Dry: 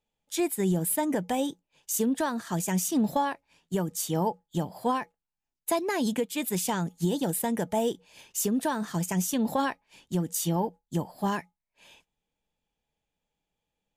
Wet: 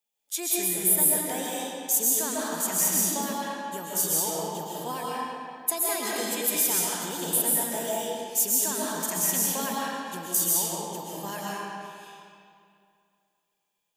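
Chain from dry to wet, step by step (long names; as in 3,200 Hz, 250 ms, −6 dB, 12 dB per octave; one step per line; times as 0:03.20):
RIAA equalisation recording
comb and all-pass reverb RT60 2.4 s, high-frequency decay 0.75×, pre-delay 90 ms, DRR −6 dB
level −7 dB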